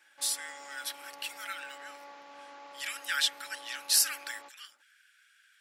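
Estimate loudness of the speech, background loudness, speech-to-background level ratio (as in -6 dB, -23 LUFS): -31.5 LUFS, -50.0 LUFS, 18.5 dB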